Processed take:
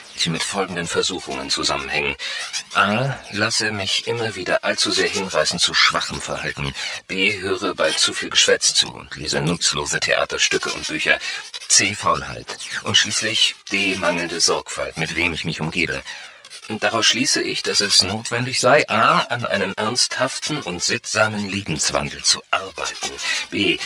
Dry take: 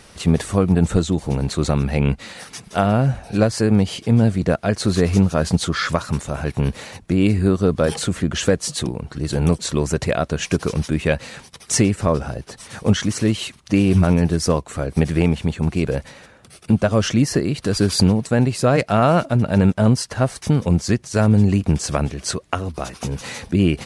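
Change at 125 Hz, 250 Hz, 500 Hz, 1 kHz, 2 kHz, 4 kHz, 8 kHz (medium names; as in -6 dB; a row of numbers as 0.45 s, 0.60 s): -12.5 dB, -9.0 dB, -1.5 dB, +4.0 dB, +9.5 dB, +11.5 dB, +7.5 dB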